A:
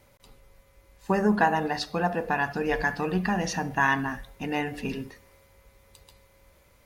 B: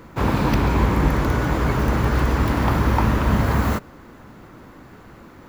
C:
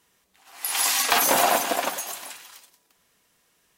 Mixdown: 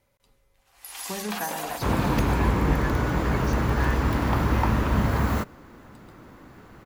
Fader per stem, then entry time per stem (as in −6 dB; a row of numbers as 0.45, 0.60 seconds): −10.5, −4.0, −13.5 decibels; 0.00, 1.65, 0.20 seconds